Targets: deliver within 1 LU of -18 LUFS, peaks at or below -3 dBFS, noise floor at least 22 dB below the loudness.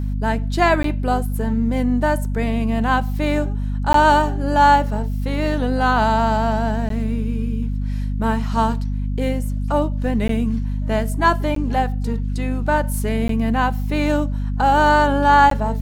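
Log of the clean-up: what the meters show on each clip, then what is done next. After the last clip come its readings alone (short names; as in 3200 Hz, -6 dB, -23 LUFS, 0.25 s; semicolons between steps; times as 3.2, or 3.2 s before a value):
dropouts 7; longest dropout 13 ms; hum 50 Hz; harmonics up to 250 Hz; hum level -20 dBFS; loudness -19.5 LUFS; peak -2.5 dBFS; loudness target -18.0 LUFS
-> interpolate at 0.83/3.93/6.89/10.28/11.55/13.28/15.5, 13 ms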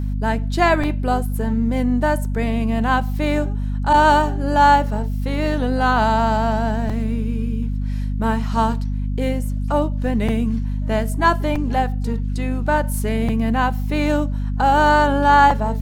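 dropouts 0; hum 50 Hz; harmonics up to 250 Hz; hum level -20 dBFS
-> de-hum 50 Hz, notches 5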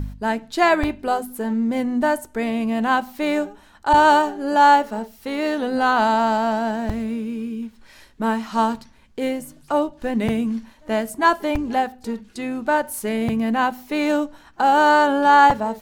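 hum none; loudness -20.5 LUFS; peak -4.0 dBFS; loudness target -18.0 LUFS
-> gain +2.5 dB; limiter -3 dBFS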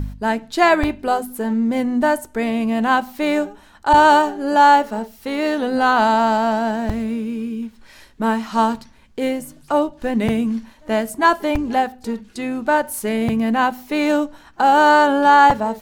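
loudness -18.0 LUFS; peak -3.0 dBFS; noise floor -49 dBFS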